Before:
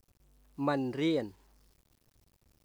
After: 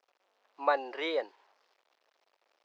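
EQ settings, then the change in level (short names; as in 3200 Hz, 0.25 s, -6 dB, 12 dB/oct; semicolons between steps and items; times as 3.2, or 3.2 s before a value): HPF 550 Hz 24 dB/oct; air absorption 220 m; +7.5 dB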